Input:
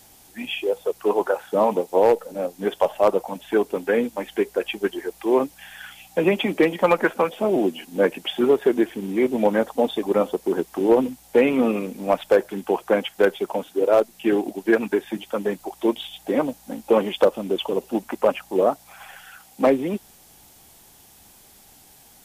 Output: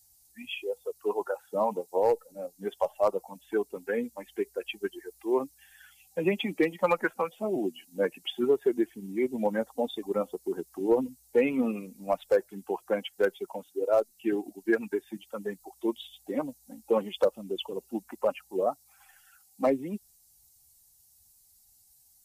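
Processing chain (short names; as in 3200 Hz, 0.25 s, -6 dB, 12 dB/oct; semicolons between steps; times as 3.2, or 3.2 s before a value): per-bin expansion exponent 1.5; gain -5 dB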